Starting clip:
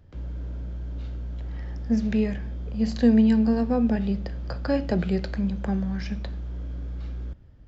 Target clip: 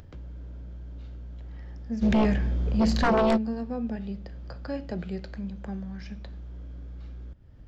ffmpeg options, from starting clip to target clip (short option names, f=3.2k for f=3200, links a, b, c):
-filter_complex "[0:a]asplit=3[a][b][c];[a]afade=t=out:st=2.01:d=0.02[d];[b]aeval=exprs='0.376*sin(PI/2*3.98*val(0)/0.376)':c=same,afade=t=in:st=2.01:d=0.02,afade=t=out:st=3.36:d=0.02[e];[c]afade=t=in:st=3.36:d=0.02[f];[d][e][f]amix=inputs=3:normalize=0,acompressor=mode=upward:threshold=-27dB:ratio=2.5,volume=-9dB"